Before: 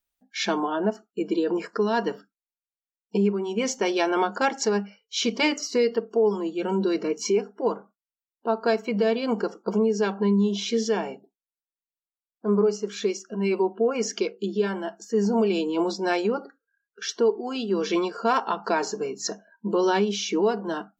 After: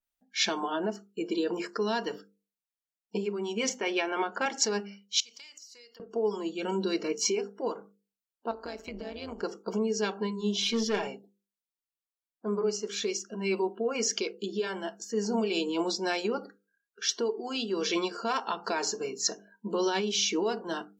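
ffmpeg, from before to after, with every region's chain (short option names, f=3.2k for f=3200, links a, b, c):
-filter_complex "[0:a]asettb=1/sr,asplit=3[a][b][c];[a]atrim=end=3.694[d];[b]atrim=start=3.69:end=4.46,asetpts=PTS-STARTPTS,afade=t=in:d=0.004:c=qsin,afade=t=out:st=0.766:d=0.004:c=qsin,highpass=f=180:w=0.5412,highpass=f=180:w=1.3066,highshelf=f=3.3k:t=q:w=1.5:g=-9[e];[c]atrim=start=4.456[f];[d][e]acrossfade=d=0.004:c1=hsin:c2=qsin[g];[g][f]acrossfade=d=0.004:c1=qsin:c2=hsin,asettb=1/sr,asplit=3[h][i][j];[h]atrim=end=5.204[k];[i]atrim=start=5.2:end=6,asetpts=PTS-STARTPTS,afade=t=in:d=0.004:c=qsin,afade=t=out:st=0.796:d=0.004:c=qsin,aderivative,acompressor=threshold=-46dB:ratio=10:attack=3.2:release=140:knee=1:detection=peak[l];[j]atrim=start=5.996[m];[k][l]acrossfade=d=0.004:c1=hsin:c2=qsin[n];[n][m]acrossfade=d=0.004:c1=qsin:c2=hsin,asettb=1/sr,asplit=3[o][p][q];[o]atrim=end=8.514[r];[p]atrim=start=8.51:end=9.43,asetpts=PTS-STARTPTS,afade=t=in:d=0.004:c=qsin,afade=t=out:st=0.916:d=0.004:c=qsin,tremolo=f=170:d=0.75,acompressor=threshold=-30dB:ratio=5:attack=3.2:release=140:knee=1:detection=peak[s];[q]atrim=start=9.426[t];[r][s]acrossfade=d=0.004:c1=hsin:c2=qsin[u];[u][t]acrossfade=d=0.004:c1=qsin:c2=hsin,asettb=1/sr,asplit=3[v][w][x];[v]atrim=end=10.624[y];[w]atrim=start=10.62:end=11.07,asetpts=PTS-STARTPTS,afade=t=in:d=0.004:c=qsin,afade=t=out:st=0.446:d=0.004:c=qsin,acrossover=split=5100[z][aa];[aa]acompressor=threshold=-53dB:ratio=4:attack=1:release=60[ab];[z][ab]amix=inputs=2:normalize=0,aecho=1:1:5:0.79,atrim=end_sample=19845,aeval=exprs='(tanh(7.08*val(0)+0.25)-tanh(0.25))/7.08':c=same[ac];[x]atrim=start=11.066[ad];[y][ac]acrossfade=d=0.004:c1=hsin:c2=qsin[ae];[ae][ad]acrossfade=d=0.004:c1=qsin:c2=hsin,alimiter=limit=-15.5dB:level=0:latency=1:release=122,bandreject=f=50:t=h:w=6,bandreject=f=100:t=h:w=6,bandreject=f=150:t=h:w=6,bandreject=f=200:t=h:w=6,bandreject=f=250:t=h:w=6,bandreject=f=300:t=h:w=6,bandreject=f=350:t=h:w=6,bandreject=f=400:t=h:w=6,bandreject=f=450:t=h:w=6,bandreject=f=500:t=h:w=6,adynamicequalizer=threshold=0.00631:dfrequency=2100:dqfactor=0.7:tfrequency=2100:tqfactor=0.7:attack=5:release=100:ratio=0.375:range=4:mode=boostabove:tftype=highshelf,volume=-4.5dB"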